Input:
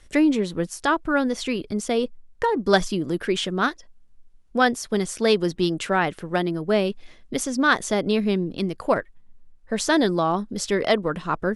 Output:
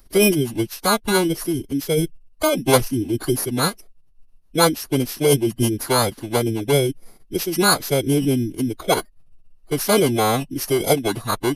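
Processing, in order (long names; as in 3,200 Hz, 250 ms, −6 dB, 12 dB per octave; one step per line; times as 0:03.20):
samples in bit-reversed order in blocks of 16 samples
phase-vocoder pitch shift with formants kept −7 semitones
level +3.5 dB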